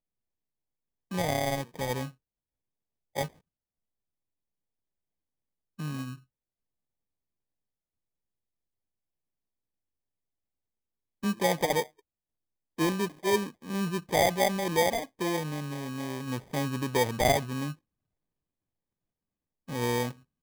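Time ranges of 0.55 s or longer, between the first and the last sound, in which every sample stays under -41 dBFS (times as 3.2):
2.09–3.16
3.28–5.79
6.15–11.23
11.84–12.78
17.73–19.69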